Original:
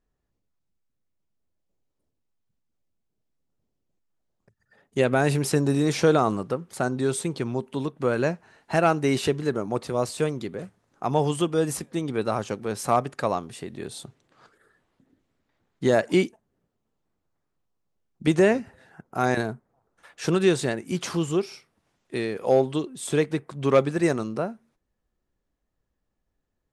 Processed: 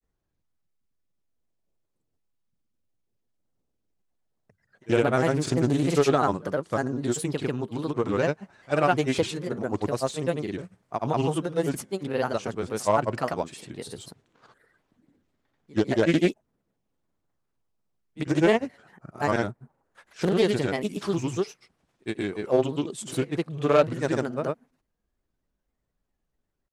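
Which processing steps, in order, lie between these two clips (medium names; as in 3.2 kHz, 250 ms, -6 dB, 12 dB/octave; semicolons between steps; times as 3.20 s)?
reverse echo 57 ms -22 dB; granulator, pitch spread up and down by 3 st; loudspeaker Doppler distortion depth 0.24 ms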